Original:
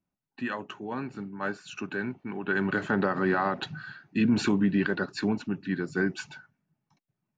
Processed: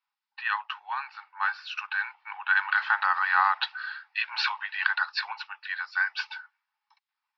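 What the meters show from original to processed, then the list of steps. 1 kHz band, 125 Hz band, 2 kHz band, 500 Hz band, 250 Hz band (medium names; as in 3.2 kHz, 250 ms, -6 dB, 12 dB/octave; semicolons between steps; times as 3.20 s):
+6.5 dB, under -40 dB, +7.0 dB, under -25 dB, under -40 dB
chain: Chebyshev band-pass 840–5200 Hz, order 5; trim +8 dB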